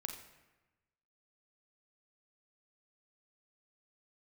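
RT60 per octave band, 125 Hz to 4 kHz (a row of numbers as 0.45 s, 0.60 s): 1.4 s, 1.3 s, 1.1 s, 1.1 s, 1.1 s, 0.80 s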